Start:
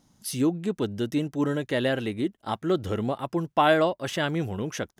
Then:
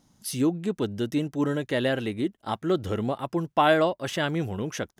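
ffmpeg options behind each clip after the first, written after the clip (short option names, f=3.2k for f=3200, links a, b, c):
-af anull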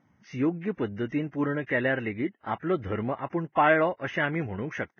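-af "highshelf=f=3k:t=q:w=3:g=-13,bandreject=f=4.2k:w=26,volume=-2.5dB" -ar 16000 -c:a libvorbis -b:a 16k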